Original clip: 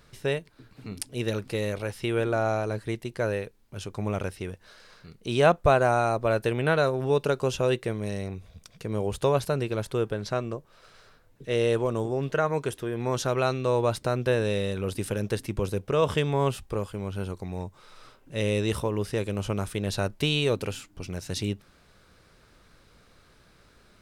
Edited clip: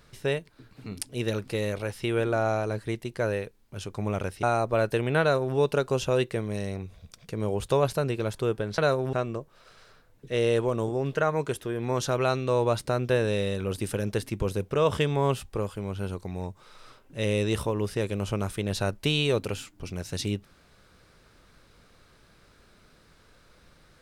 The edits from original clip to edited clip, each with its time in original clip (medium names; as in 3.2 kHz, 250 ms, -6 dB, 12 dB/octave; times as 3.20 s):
4.43–5.95 s: delete
6.73–7.08 s: copy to 10.30 s